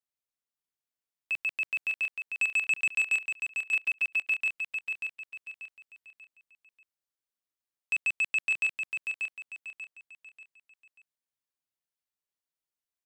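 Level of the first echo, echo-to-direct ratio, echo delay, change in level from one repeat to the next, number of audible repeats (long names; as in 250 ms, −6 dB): −5.5 dB, −5.0 dB, 588 ms, −9.0 dB, 4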